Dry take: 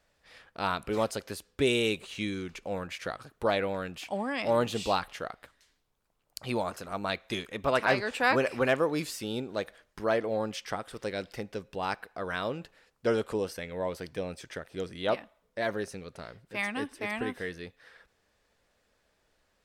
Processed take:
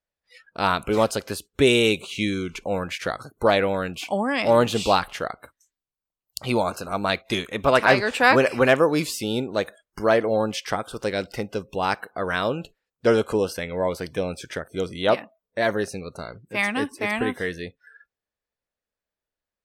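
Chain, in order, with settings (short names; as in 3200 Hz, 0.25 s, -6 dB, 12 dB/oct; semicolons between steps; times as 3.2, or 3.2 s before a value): spectral noise reduction 28 dB; gain +8.5 dB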